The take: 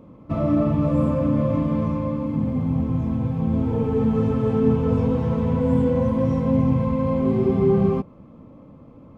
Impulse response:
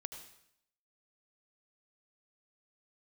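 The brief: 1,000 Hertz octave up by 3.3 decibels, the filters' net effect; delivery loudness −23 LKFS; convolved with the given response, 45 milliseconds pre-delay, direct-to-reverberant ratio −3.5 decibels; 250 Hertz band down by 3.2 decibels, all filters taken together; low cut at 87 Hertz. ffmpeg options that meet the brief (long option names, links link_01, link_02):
-filter_complex "[0:a]highpass=87,equalizer=frequency=250:width_type=o:gain=-4,equalizer=frequency=1000:width_type=o:gain=4,asplit=2[link_01][link_02];[1:a]atrim=start_sample=2205,adelay=45[link_03];[link_02][link_03]afir=irnorm=-1:irlink=0,volume=6dB[link_04];[link_01][link_04]amix=inputs=2:normalize=0,volume=-4.5dB"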